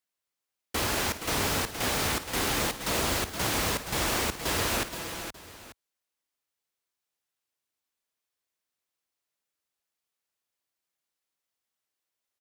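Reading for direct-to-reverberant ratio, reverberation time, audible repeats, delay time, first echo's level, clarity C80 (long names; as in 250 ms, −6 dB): no reverb audible, no reverb audible, 5, 54 ms, −14.5 dB, no reverb audible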